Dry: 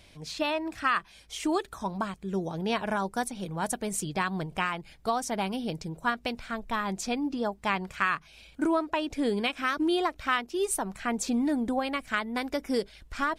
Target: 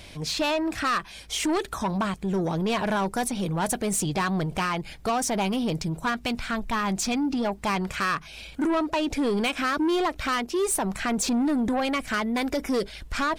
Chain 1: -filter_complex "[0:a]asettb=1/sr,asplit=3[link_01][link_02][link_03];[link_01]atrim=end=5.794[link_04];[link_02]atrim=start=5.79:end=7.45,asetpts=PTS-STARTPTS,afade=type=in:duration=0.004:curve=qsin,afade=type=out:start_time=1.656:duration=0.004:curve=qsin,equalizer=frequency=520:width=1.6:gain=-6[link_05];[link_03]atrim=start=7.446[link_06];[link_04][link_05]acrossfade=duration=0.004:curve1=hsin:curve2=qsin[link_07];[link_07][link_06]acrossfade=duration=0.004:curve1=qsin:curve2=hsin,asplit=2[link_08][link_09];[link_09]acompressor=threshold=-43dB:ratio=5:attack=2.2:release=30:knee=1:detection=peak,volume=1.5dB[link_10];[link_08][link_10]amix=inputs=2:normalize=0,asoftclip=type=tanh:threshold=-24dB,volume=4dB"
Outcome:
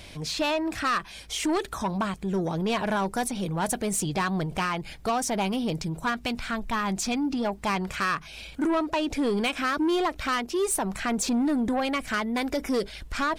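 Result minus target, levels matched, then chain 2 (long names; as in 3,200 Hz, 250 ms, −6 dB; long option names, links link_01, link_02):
downward compressor: peak gain reduction +7 dB
-filter_complex "[0:a]asettb=1/sr,asplit=3[link_01][link_02][link_03];[link_01]atrim=end=5.794[link_04];[link_02]atrim=start=5.79:end=7.45,asetpts=PTS-STARTPTS,afade=type=in:duration=0.004:curve=qsin,afade=type=out:start_time=1.656:duration=0.004:curve=qsin,equalizer=frequency=520:width=1.6:gain=-6[link_05];[link_03]atrim=start=7.446[link_06];[link_04][link_05]acrossfade=duration=0.004:curve1=hsin:curve2=qsin[link_07];[link_07][link_06]acrossfade=duration=0.004:curve1=qsin:curve2=hsin,asplit=2[link_08][link_09];[link_09]acompressor=threshold=-34.5dB:ratio=5:attack=2.2:release=30:knee=1:detection=peak,volume=1.5dB[link_10];[link_08][link_10]amix=inputs=2:normalize=0,asoftclip=type=tanh:threshold=-24dB,volume=4dB"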